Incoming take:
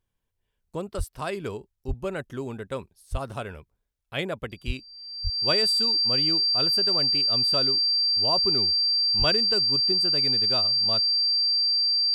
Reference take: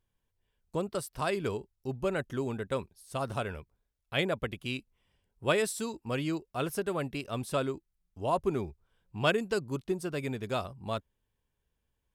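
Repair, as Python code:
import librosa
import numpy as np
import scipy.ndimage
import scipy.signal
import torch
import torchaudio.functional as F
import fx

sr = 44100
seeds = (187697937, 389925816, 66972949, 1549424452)

y = fx.notch(x, sr, hz=4700.0, q=30.0)
y = fx.fix_deplosive(y, sr, at_s=(0.97, 1.87, 3.11, 4.66, 5.23, 9.18))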